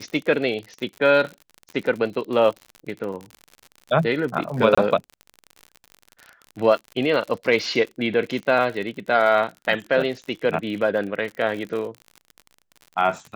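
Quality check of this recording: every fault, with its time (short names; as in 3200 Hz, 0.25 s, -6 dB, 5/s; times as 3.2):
crackle 53/s -30 dBFS
4.75–4.78 gap 25 ms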